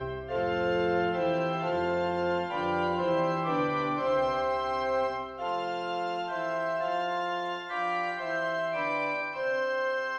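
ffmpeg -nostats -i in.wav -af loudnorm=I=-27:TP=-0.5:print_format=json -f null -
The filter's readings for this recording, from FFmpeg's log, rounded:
"input_i" : "-29.8",
"input_tp" : "-16.4",
"input_lra" : "2.2",
"input_thresh" : "-39.8",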